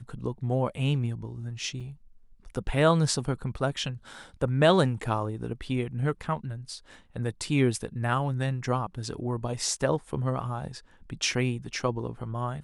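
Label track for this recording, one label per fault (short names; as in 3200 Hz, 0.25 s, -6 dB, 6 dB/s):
1.800000	1.810000	gap 5.5 ms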